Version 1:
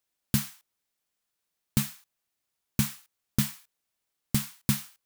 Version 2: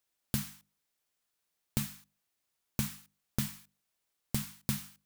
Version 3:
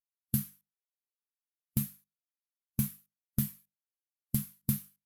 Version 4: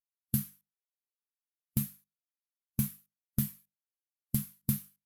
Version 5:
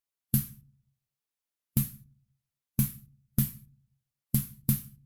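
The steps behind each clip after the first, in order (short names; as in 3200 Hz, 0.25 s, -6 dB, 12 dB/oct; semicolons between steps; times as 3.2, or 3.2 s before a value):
notches 50/100/150/200/250/300 Hz; compressor 2:1, threshold -33 dBFS, peak gain reduction 7.5 dB
bell 12000 Hz +13 dB 0.53 oct; spectral expander 1.5:1; gain -3 dB
nothing audible
shoebox room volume 310 m³, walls furnished, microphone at 0.33 m; gain +3.5 dB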